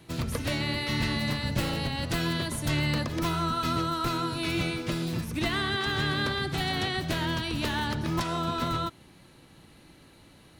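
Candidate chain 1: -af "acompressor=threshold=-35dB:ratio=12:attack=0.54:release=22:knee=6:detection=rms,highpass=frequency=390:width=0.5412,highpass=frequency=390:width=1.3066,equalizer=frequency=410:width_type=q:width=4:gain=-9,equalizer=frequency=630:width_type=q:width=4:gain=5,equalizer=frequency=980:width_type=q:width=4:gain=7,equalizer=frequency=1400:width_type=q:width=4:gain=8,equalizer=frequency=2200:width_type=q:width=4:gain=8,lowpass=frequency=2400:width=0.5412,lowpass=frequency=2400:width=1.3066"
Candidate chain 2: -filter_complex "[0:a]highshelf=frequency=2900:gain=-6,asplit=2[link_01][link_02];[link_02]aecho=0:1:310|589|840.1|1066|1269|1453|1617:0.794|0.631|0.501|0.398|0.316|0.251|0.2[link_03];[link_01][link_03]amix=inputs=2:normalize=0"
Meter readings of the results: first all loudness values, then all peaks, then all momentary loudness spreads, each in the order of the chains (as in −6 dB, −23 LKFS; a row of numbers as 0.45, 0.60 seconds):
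−38.0, −26.5 LKFS; −25.0, −12.5 dBFS; 21, 6 LU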